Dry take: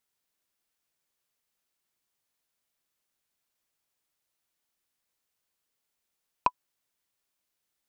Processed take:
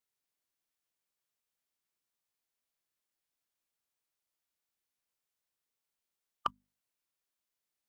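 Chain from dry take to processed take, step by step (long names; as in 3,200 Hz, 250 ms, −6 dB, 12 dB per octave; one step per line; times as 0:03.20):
mains-hum notches 50/100/150/200/250 Hz
formants moved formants +3 semitones
level −7 dB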